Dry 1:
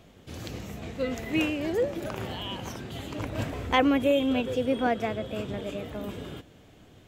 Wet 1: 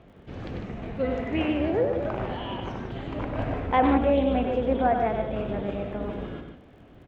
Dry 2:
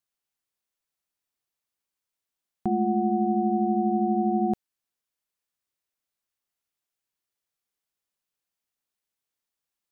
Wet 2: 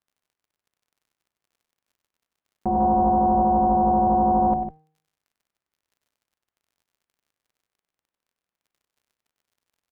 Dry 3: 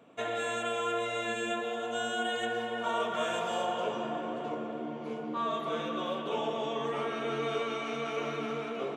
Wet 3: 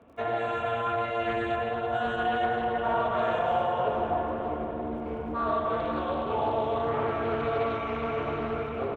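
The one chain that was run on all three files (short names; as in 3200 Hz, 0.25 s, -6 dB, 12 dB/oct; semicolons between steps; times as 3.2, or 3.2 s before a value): octaver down 2 oct, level -2 dB; LPF 2000 Hz 12 dB/oct; de-hum 155.7 Hz, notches 32; dynamic EQ 760 Hz, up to +7 dB, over -43 dBFS, Q 2.7; in parallel at +1.5 dB: limiter -22 dBFS; on the sum: low shelf 61 Hz -8 dB; crackle 27/s -50 dBFS; on a send: loudspeakers at several distances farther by 33 m -7 dB, 52 m -9 dB; on the sum: Doppler distortion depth 0.21 ms; gain -4 dB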